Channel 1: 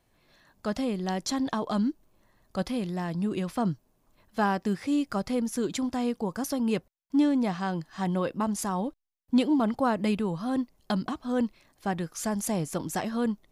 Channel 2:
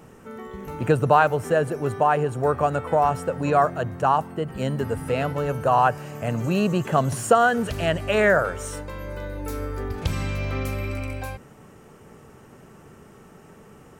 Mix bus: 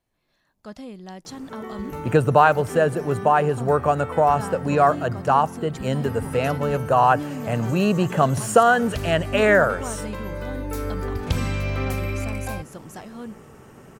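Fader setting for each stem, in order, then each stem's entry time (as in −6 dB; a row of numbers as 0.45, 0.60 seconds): −8.5, +2.0 decibels; 0.00, 1.25 seconds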